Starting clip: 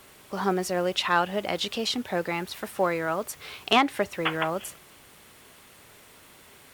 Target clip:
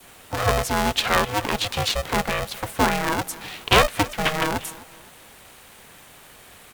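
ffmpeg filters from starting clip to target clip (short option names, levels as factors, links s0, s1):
-filter_complex "[0:a]bandreject=f=5000:w=5.2,asplit=2[s0][s1];[s1]adelay=257,lowpass=f=2000:p=1,volume=0.112,asplit=2[s2][s3];[s3]adelay=257,lowpass=f=2000:p=1,volume=0.39,asplit=2[s4][s5];[s5]adelay=257,lowpass=f=2000:p=1,volume=0.39[s6];[s2][s4][s6]amix=inputs=3:normalize=0[s7];[s0][s7]amix=inputs=2:normalize=0,adynamicequalizer=threshold=0.0126:dfrequency=1200:dqfactor=1.2:tfrequency=1200:tqfactor=1.2:attack=5:release=100:ratio=0.375:range=2:mode=cutabove:tftype=bell,aeval=exprs='val(0)*sgn(sin(2*PI*310*n/s))':c=same,volume=1.78"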